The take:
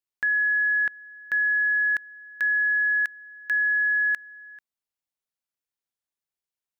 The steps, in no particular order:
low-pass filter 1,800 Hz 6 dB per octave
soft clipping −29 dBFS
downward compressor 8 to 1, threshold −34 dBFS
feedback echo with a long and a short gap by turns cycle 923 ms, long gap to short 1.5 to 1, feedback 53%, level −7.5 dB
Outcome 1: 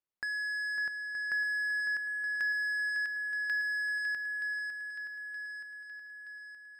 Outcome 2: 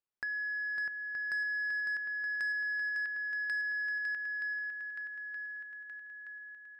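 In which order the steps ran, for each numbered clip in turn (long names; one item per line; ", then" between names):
low-pass filter, then soft clipping, then downward compressor, then feedback echo with a long and a short gap by turns
low-pass filter, then downward compressor, then feedback echo with a long and a short gap by turns, then soft clipping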